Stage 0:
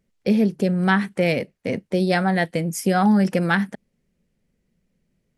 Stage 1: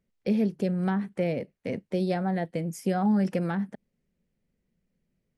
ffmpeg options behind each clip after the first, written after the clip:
ffmpeg -i in.wav -filter_complex "[0:a]highshelf=frequency=5000:gain=-5,acrossover=split=890[link_01][link_02];[link_02]acompressor=threshold=-33dB:ratio=10[link_03];[link_01][link_03]amix=inputs=2:normalize=0,volume=-6.5dB" out.wav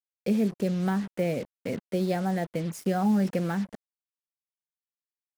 ffmpeg -i in.wav -af "acrusher=bits=6:mix=0:aa=0.5" out.wav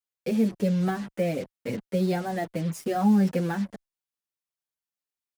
ffmpeg -i in.wav -filter_complex "[0:a]asplit=2[link_01][link_02];[link_02]adelay=6.9,afreqshift=-1.6[link_03];[link_01][link_03]amix=inputs=2:normalize=1,volume=4dB" out.wav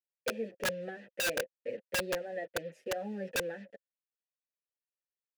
ffmpeg -i in.wav -filter_complex "[0:a]asplit=3[link_01][link_02][link_03];[link_01]bandpass=frequency=530:width_type=q:width=8,volume=0dB[link_04];[link_02]bandpass=frequency=1840:width_type=q:width=8,volume=-6dB[link_05];[link_03]bandpass=frequency=2480:width_type=q:width=8,volume=-9dB[link_06];[link_04][link_05][link_06]amix=inputs=3:normalize=0,aeval=exprs='(mod(25.1*val(0)+1,2)-1)/25.1':channel_layout=same,volume=2dB" out.wav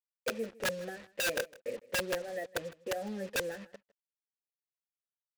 ffmpeg -i in.wav -af "acrusher=bits=7:mix=0:aa=0.5,aecho=1:1:157:0.0841" out.wav

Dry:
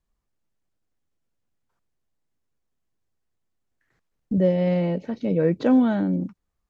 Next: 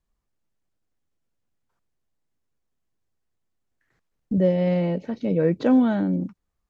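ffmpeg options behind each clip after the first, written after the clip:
ffmpeg -i in.wav -af anull out.wav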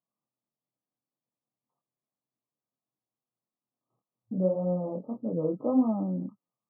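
ffmpeg -i in.wav -af "flanger=delay=22.5:depth=5:speed=1.7,afftfilt=real='re*between(b*sr/4096,110,1300)':imag='im*between(b*sr/4096,110,1300)':win_size=4096:overlap=0.75,equalizer=frequency=160:width_type=o:width=0.67:gain=-8,equalizer=frequency=400:width_type=o:width=0.67:gain=-7,equalizer=frequency=1000:width_type=o:width=0.67:gain=-3" out.wav

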